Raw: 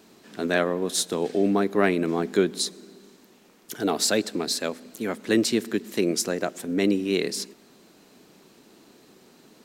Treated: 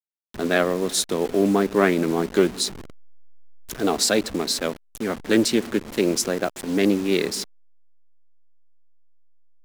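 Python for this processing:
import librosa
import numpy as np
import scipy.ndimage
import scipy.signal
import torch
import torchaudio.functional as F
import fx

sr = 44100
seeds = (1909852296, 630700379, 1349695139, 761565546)

y = fx.delta_hold(x, sr, step_db=-34.0)
y = fx.vibrato(y, sr, rate_hz=0.36, depth_cents=24.0)
y = fx.doppler_dist(y, sr, depth_ms=0.13)
y = F.gain(torch.from_numpy(y), 3.0).numpy()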